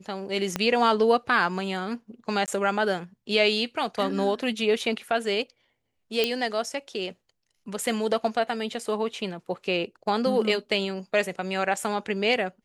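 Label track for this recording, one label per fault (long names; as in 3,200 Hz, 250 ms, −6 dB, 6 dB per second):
0.560000	0.560000	click −11 dBFS
2.460000	2.480000	drop-out 18 ms
6.240000	6.240000	click −9 dBFS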